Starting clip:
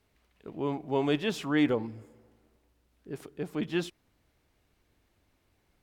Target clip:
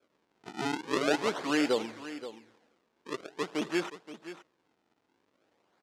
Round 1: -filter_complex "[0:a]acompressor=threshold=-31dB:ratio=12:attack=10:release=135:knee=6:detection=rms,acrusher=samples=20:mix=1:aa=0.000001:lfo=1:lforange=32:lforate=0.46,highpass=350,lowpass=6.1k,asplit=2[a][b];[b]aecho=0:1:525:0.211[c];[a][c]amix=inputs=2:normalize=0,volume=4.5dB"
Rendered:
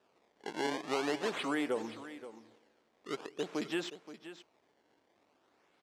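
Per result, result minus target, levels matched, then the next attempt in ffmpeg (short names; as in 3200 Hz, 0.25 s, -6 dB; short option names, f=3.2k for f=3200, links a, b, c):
compressor: peak gain reduction +7.5 dB; decimation with a swept rate: distortion -6 dB
-filter_complex "[0:a]acompressor=threshold=-22.5dB:ratio=12:attack=10:release=135:knee=6:detection=rms,acrusher=samples=20:mix=1:aa=0.000001:lfo=1:lforange=32:lforate=0.46,highpass=350,lowpass=6.1k,asplit=2[a][b];[b]aecho=0:1:525:0.211[c];[a][c]amix=inputs=2:normalize=0,volume=4.5dB"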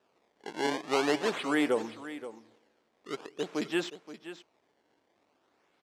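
decimation with a swept rate: distortion -6 dB
-filter_complex "[0:a]acompressor=threshold=-22.5dB:ratio=12:attack=10:release=135:knee=6:detection=rms,acrusher=samples=45:mix=1:aa=0.000001:lfo=1:lforange=72:lforate=0.46,highpass=350,lowpass=6.1k,asplit=2[a][b];[b]aecho=0:1:525:0.211[c];[a][c]amix=inputs=2:normalize=0,volume=4.5dB"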